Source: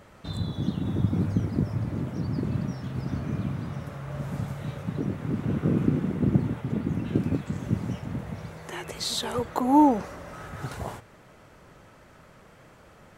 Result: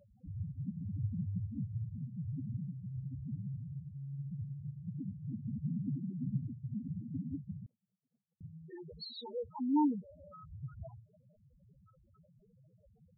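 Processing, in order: loudest bins only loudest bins 2; in parallel at -1.5 dB: compressor, threshold -42 dBFS, peak gain reduction 22.5 dB; 7.66–8.41 on the sum: Chebyshev band-pass 470–1400 Hz, order 3; gain -8.5 dB

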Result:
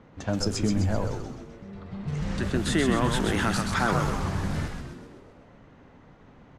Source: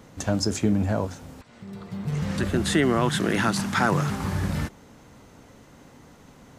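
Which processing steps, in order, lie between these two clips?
low-pass opened by the level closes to 2400 Hz, open at -19.5 dBFS; frequency-shifting echo 0.129 s, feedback 54%, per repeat -110 Hz, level -4.5 dB; gain -3.5 dB

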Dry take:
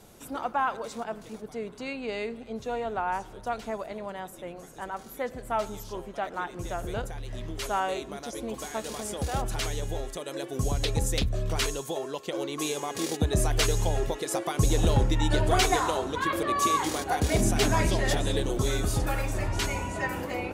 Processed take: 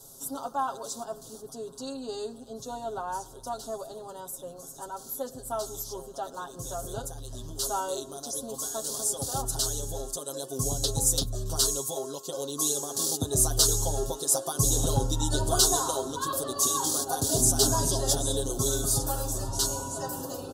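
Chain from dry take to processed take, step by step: Butterworth band-stop 2200 Hz, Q 0.95; tone controls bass -1 dB, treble +14 dB; comb 7.4 ms, depth 87%; gain -5 dB

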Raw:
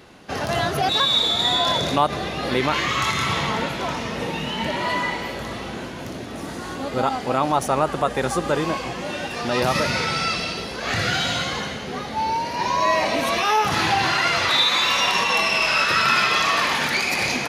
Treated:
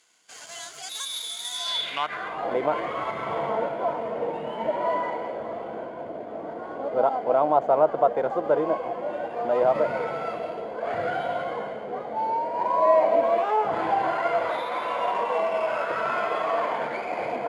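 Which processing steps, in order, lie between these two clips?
median filter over 9 samples; band-pass sweep 6900 Hz -> 610 Hz, 1.51–2.58; ripple EQ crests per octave 1.8, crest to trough 6 dB; gain +4.5 dB

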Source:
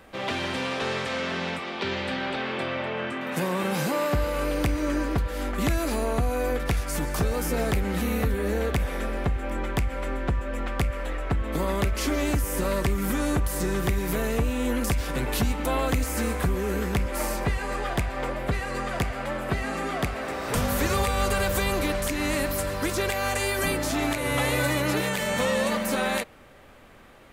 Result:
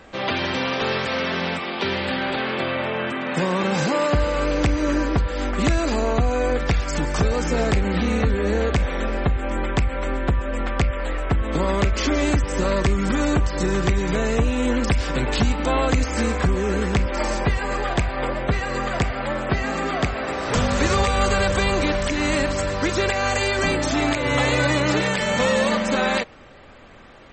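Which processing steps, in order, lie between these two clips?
gain +5.5 dB; MP3 32 kbps 48000 Hz

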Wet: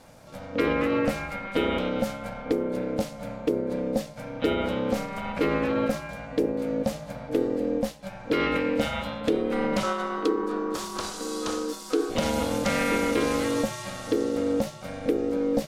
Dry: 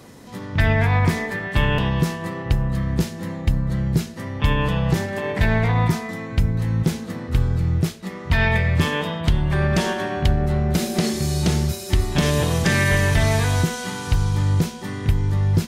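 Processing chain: 9.83–12.1 EQ curve 100 Hz 0 dB, 240 Hz -28 dB, 490 Hz -2 dB, 970 Hz +12 dB, 1800 Hz -7 dB, 3300 Hz 0 dB, 7700 Hz +1 dB, 14000 Hz -6 dB; ring modulator 380 Hz; gain -4 dB

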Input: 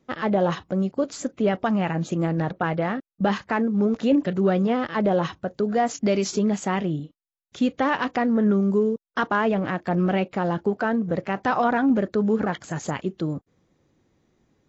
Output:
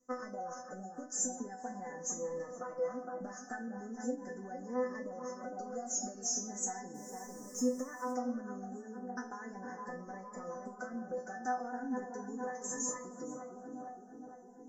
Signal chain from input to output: tape echo 0.458 s, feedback 77%, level -8 dB, low-pass 1300 Hz; two-slope reverb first 0.41 s, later 1.5 s, from -17 dB, DRR 5.5 dB; 6.94–8.11 sample gate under -38.5 dBFS; bell 100 Hz -12.5 dB 3 oct; compressor, threshold -30 dBFS, peak gain reduction 12.5 dB; elliptic band-stop 1700–5600 Hz, stop band 40 dB; bell 6700 Hz +13 dB 0.7 oct; resonator 250 Hz, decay 0.25 s, harmonics all, mix 100%; cascading phaser rising 0.38 Hz; gain +8 dB

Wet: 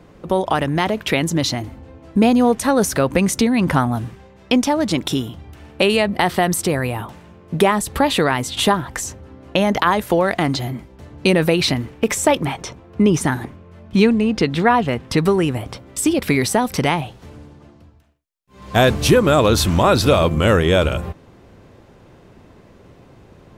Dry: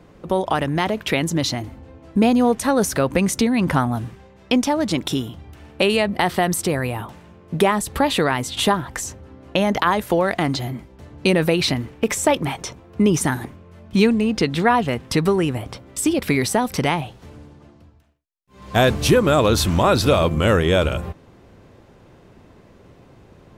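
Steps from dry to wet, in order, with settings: 12.46–15.18 high shelf 6100 Hz -7 dB; gain +2 dB

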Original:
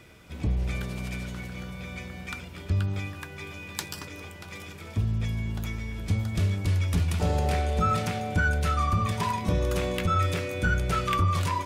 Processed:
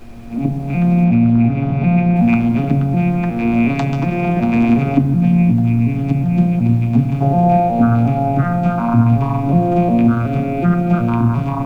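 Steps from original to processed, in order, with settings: arpeggiated vocoder minor triad, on A#2, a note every 0.366 s; recorder AGC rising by 15 dB/s; high shelf 5100 Hz -8.5 dB; notches 50/100/150/200/250 Hz; requantised 10-bit, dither none; small resonant body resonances 240/700/2400 Hz, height 17 dB, ringing for 25 ms; added noise brown -40 dBFS; 1.04–2.16 air absorption 120 m; on a send: reverb RT60 2.9 s, pre-delay 6 ms, DRR 10 dB; on the sum: gain +4.5 dB

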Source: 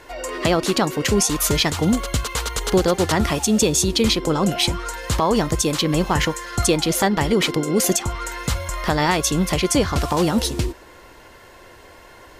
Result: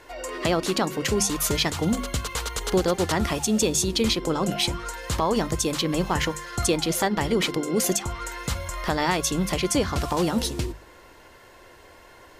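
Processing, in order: notches 50/100/150/200/250 Hz; gain -4.5 dB

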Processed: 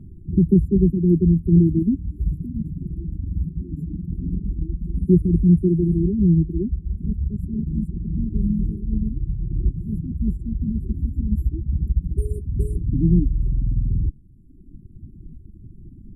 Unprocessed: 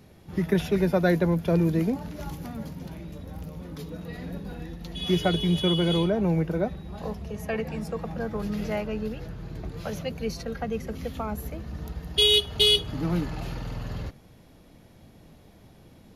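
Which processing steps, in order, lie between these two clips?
reverb removal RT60 1.4 s; brick-wall FIR band-stop 400–7200 Hz; tilt -4.5 dB/oct

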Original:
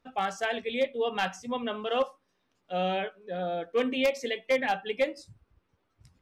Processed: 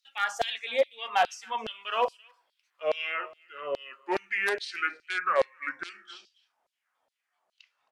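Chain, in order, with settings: speed glide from 106% -> 51%; high shelf 6700 Hz +4.5 dB; on a send: echo 0.267 s -24 dB; on the sum: dynamic EQ 240 Hz, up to +7 dB, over -42 dBFS, Q 1.2; LFO high-pass saw down 2.4 Hz 590–4400 Hz

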